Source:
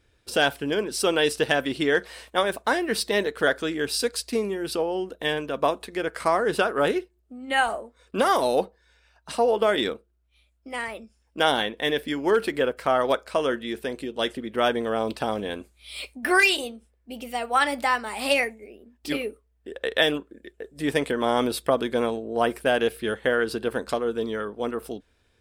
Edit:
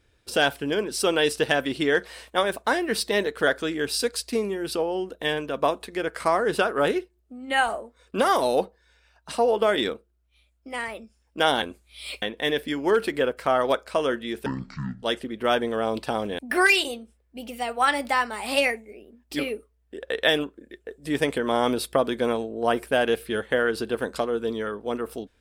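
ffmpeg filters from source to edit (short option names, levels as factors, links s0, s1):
-filter_complex "[0:a]asplit=6[s0][s1][s2][s3][s4][s5];[s0]atrim=end=11.622[s6];[s1]atrim=start=15.518:end=16.122[s7];[s2]atrim=start=11.618:end=13.864[s8];[s3]atrim=start=13.86:end=14.16,asetpts=PTS-STARTPTS,asetrate=23373,aresample=44100,atrim=end_sample=24962,asetpts=PTS-STARTPTS[s9];[s4]atrim=start=14.156:end=15.522[s10];[s5]atrim=start=16.118[s11];[s6][s7]acrossfade=d=0.004:c1=hsin:c2=hsin[s12];[s12][s8]acrossfade=d=0.004:c1=hsin:c2=hsin[s13];[s13][s9]acrossfade=d=0.004:c1=hsin:c2=hsin[s14];[s14][s10]acrossfade=d=0.004:c1=hsin:c2=hsin[s15];[s15][s11]acrossfade=d=0.004:c1=hsin:c2=hsin"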